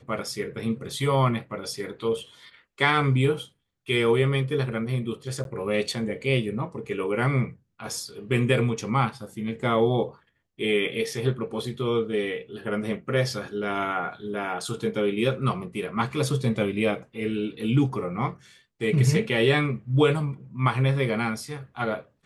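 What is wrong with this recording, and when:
0:05.44–0:05.45: drop-out

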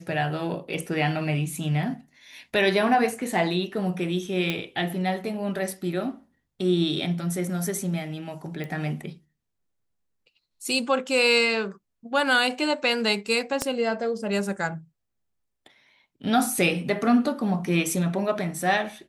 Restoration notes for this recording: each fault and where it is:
0:04.50: click −13 dBFS
0:08.64: click −22 dBFS
0:13.62: click −10 dBFS

